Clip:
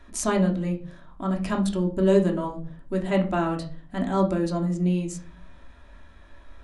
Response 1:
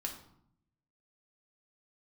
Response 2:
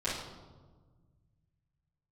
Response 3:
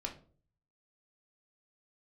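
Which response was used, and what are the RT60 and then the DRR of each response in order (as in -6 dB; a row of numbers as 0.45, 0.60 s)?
3; 0.70, 1.4, 0.45 s; 0.5, -11.5, 0.0 dB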